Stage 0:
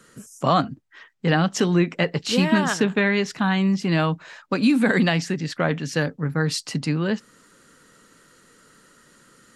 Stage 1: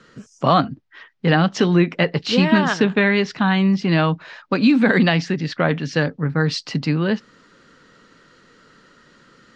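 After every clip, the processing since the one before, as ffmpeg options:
-af "lowpass=f=5200:w=0.5412,lowpass=f=5200:w=1.3066,volume=1.5"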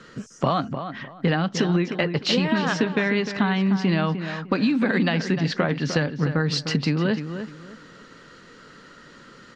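-filter_complex "[0:a]acompressor=threshold=0.0708:ratio=6,asplit=2[s0][s1];[s1]adelay=303,lowpass=f=2600:p=1,volume=0.355,asplit=2[s2][s3];[s3]adelay=303,lowpass=f=2600:p=1,volume=0.26,asplit=2[s4][s5];[s5]adelay=303,lowpass=f=2600:p=1,volume=0.26[s6];[s2][s4][s6]amix=inputs=3:normalize=0[s7];[s0][s7]amix=inputs=2:normalize=0,volume=1.58"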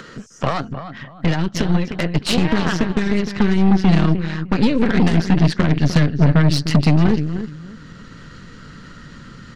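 -af "asubboost=boost=7:cutoff=160,aeval=exprs='0.668*(cos(1*acos(clip(val(0)/0.668,-1,1)))-cos(1*PI/2))+0.106*(cos(8*acos(clip(val(0)/0.668,-1,1)))-cos(8*PI/2))':c=same,acompressor=mode=upward:threshold=0.0282:ratio=2.5"

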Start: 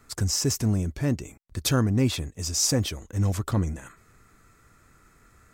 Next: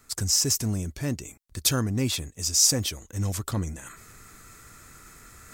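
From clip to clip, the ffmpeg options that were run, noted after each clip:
-af "highshelf=f=3000:g=10.5,areverse,acompressor=mode=upward:threshold=0.02:ratio=2.5,areverse,volume=0.631"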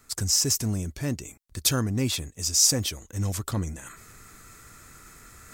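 -af anull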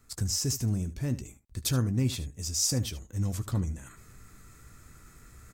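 -af "lowshelf=f=260:g=10.5,aecho=1:1:16|75:0.251|0.168,volume=0.376"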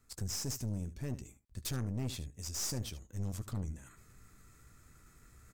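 -af "aeval=exprs='(tanh(25.1*val(0)+0.6)-tanh(0.6))/25.1':c=same,volume=0.596"

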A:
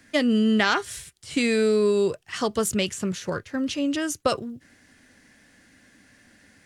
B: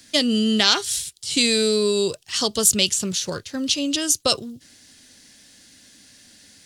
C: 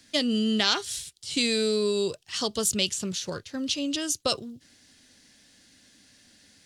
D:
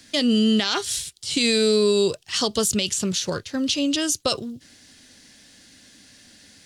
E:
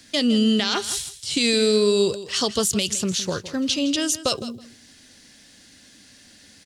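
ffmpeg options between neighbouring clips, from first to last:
-af "highshelf=f=2700:t=q:w=1.5:g=11.5"
-af "highshelf=f=6300:g=-7,volume=0.562"
-af "alimiter=limit=0.126:level=0:latency=1:release=43,volume=2.24"
-af "aecho=1:1:162|324:0.188|0.0339"

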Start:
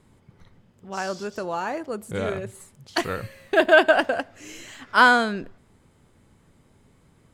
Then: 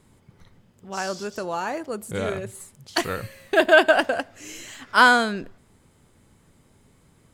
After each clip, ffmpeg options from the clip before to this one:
-af "highshelf=f=4900:g=6.5"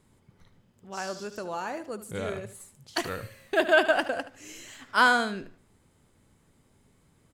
-af "aecho=1:1:75|150|225:0.2|0.0499|0.0125,volume=0.501"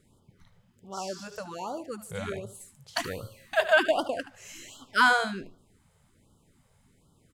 -af "afftfilt=real='re*(1-between(b*sr/1024,270*pow(2100/270,0.5+0.5*sin(2*PI*1.3*pts/sr))/1.41,270*pow(2100/270,0.5+0.5*sin(2*PI*1.3*pts/sr))*1.41))':imag='im*(1-between(b*sr/1024,270*pow(2100/270,0.5+0.5*sin(2*PI*1.3*pts/sr))/1.41,270*pow(2100/270,0.5+0.5*sin(2*PI*1.3*pts/sr))*1.41))':win_size=1024:overlap=0.75"

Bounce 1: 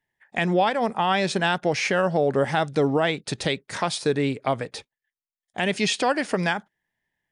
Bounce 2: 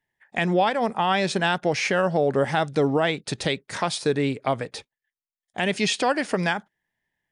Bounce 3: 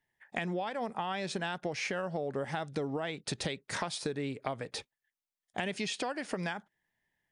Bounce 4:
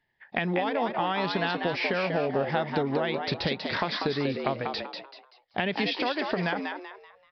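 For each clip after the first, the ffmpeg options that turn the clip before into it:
-af anull
-af "acompressor=threshold=0.0316:ratio=10,volume=0.841"
-filter_complex "[0:a]asplit=5[s0][s1][s2][s3][s4];[s1]adelay=192,afreqshift=93,volume=0.562[s5];[s2]adelay=384,afreqshift=186,volume=0.191[s6];[s3]adelay=576,afreqshift=279,volume=0.0653[s7];[s4]adelay=768,afreqshift=372,volume=0.0221[s8];[s0][s5][s6][s7][s8]amix=inputs=5:normalize=0,aresample=11025,aresample=44100,volume=2.11"

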